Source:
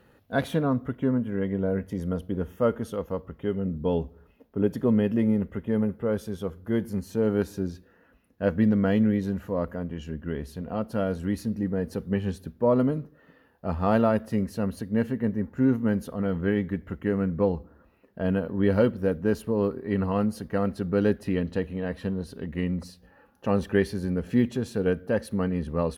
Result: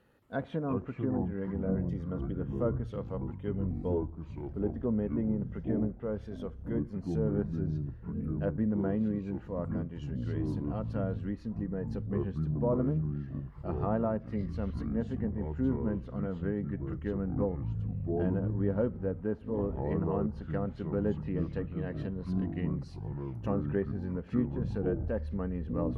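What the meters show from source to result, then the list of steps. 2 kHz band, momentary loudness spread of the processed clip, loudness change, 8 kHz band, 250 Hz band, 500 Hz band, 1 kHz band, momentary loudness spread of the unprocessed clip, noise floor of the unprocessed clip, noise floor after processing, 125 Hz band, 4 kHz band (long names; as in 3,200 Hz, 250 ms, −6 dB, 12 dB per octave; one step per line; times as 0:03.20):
−12.5 dB, 7 LU, −6.5 dB, can't be measured, −6.5 dB, −8.0 dB, −8.5 dB, 11 LU, −60 dBFS, −47 dBFS, −2.5 dB, below −10 dB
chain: treble cut that deepens with the level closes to 1,200 Hz, closed at −21 dBFS
delay with pitch and tempo change per echo 222 ms, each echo −6 semitones, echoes 3
level −8.5 dB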